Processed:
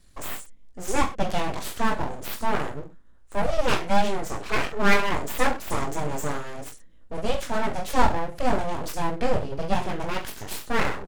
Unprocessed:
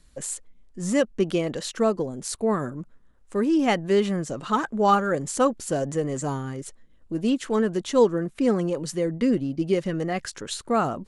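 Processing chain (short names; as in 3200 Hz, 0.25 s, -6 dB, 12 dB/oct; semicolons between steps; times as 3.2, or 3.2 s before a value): reverse bouncing-ball echo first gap 20 ms, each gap 1.1×, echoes 5; full-wave rectifier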